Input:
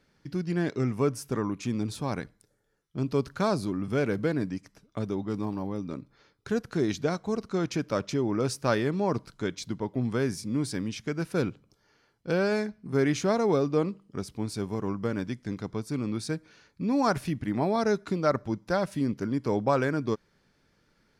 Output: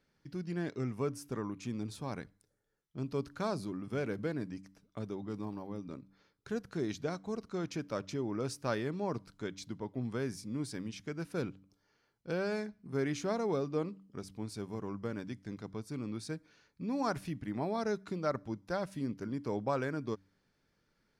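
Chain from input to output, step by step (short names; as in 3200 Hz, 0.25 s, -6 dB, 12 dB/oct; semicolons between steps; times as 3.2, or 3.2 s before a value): de-hum 96.01 Hz, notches 3; gain -8.5 dB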